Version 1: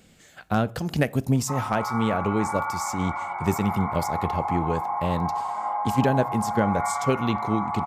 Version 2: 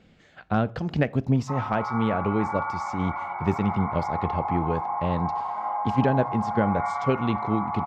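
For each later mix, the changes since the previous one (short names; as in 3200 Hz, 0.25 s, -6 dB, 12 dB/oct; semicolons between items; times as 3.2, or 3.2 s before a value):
master: add air absorption 210 m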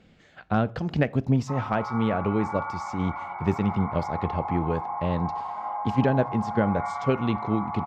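background -3.0 dB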